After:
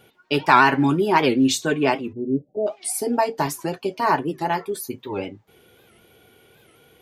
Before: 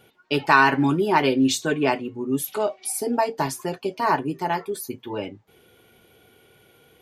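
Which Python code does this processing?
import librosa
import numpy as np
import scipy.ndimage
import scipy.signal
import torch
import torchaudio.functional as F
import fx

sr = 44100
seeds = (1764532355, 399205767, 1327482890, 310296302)

y = fx.steep_lowpass(x, sr, hz=680.0, slope=72, at=(2.12, 2.66), fade=0.02)
y = fx.record_warp(y, sr, rpm=78.0, depth_cents=160.0)
y = y * librosa.db_to_amplitude(1.5)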